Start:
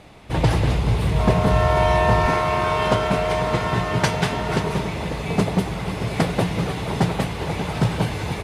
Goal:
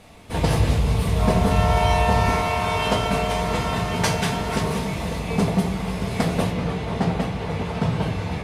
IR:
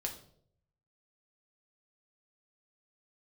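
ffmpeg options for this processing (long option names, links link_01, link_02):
-filter_complex "[0:a]asetnsamples=nb_out_samples=441:pad=0,asendcmd='5.19 highshelf g 4.5;6.51 highshelf g -9',highshelf=frequency=6400:gain=10[link_01];[1:a]atrim=start_sample=2205,asetrate=57330,aresample=44100[link_02];[link_01][link_02]afir=irnorm=-1:irlink=0"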